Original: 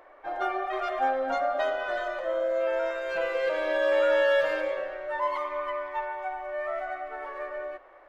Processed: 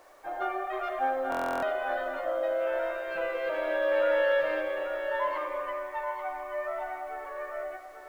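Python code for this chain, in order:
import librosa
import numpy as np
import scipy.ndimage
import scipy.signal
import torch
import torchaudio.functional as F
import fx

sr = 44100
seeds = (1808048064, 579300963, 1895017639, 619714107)

y = scipy.signal.sosfilt(scipy.signal.butter(2, 3200.0, 'lowpass', fs=sr, output='sos'), x)
y = fx.quant_dither(y, sr, seeds[0], bits=10, dither='none')
y = y + 10.0 ** (-7.5 / 20.0) * np.pad(y, (int(836 * sr / 1000.0), 0))[:len(y)]
y = fx.buffer_glitch(y, sr, at_s=(1.3,), block=1024, repeats=13)
y = y * librosa.db_to_amplitude(-2.5)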